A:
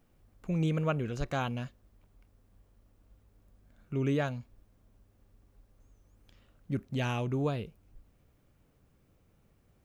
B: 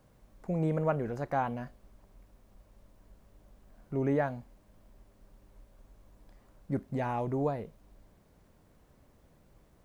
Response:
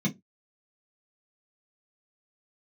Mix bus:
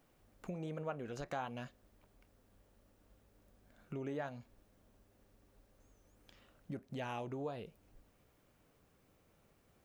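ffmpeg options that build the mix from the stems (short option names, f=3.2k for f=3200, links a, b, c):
-filter_complex "[0:a]acompressor=threshold=-40dB:ratio=2,volume=1.5dB[a];[1:a]flanger=delay=5.4:depth=9.7:regen=59:speed=1.3:shape=triangular,volume=-9dB,asplit=2[b][c];[c]apad=whole_len=434327[d];[a][d]sidechaincompress=threshold=-49dB:ratio=8:attack=24:release=228[e];[e][b]amix=inputs=2:normalize=0,lowshelf=f=200:g=-11"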